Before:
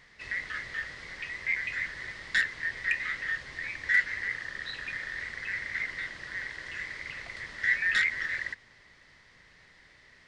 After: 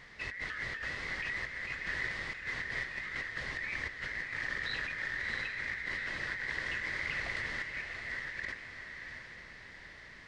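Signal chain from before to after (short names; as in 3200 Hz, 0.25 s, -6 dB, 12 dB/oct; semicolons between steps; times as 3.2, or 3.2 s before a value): high shelf 4000 Hz -6 dB; negative-ratio compressor -41 dBFS, ratio -1; on a send: diffused feedback echo 0.701 s, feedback 43%, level -6 dB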